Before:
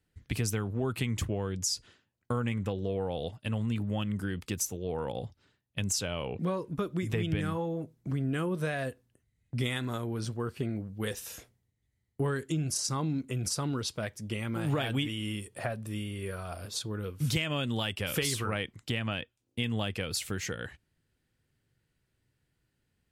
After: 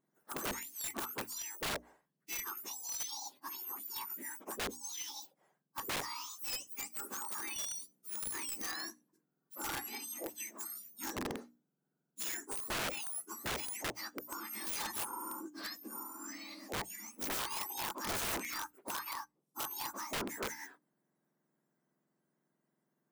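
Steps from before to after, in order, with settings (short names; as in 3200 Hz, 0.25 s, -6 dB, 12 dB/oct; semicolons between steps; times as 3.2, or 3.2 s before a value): spectrum mirrored in octaves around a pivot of 1700 Hz; wrapped overs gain 28.5 dB; notches 60/120/180/240/300 Hz; gain -3 dB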